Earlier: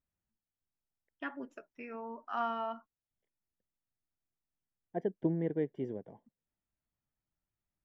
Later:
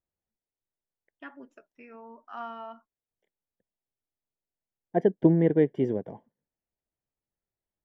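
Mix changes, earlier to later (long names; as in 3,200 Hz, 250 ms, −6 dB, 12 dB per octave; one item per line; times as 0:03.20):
first voice −4.0 dB
second voice +11.5 dB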